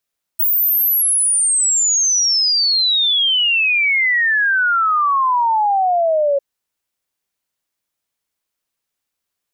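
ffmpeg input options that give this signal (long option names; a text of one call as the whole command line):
ffmpeg -f lavfi -i "aevalsrc='0.237*clip(min(t,6-t)/0.01,0,1)*sin(2*PI*16000*6/log(550/16000)*(exp(log(550/16000)*t/6)-1))':duration=6:sample_rate=44100" out.wav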